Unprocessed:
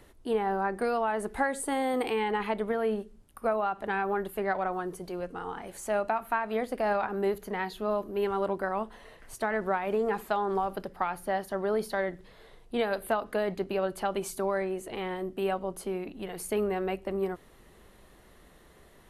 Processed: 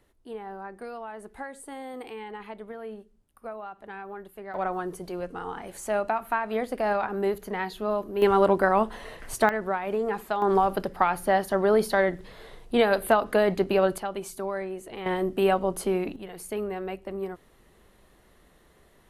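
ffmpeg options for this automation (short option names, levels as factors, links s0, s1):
-af "asetnsamples=n=441:p=0,asendcmd='4.54 volume volume 2dB;8.22 volume volume 9.5dB;9.49 volume volume 0.5dB;10.42 volume volume 7.5dB;13.98 volume volume -2dB;15.06 volume volume 7.5dB;16.16 volume volume -2.5dB',volume=0.316"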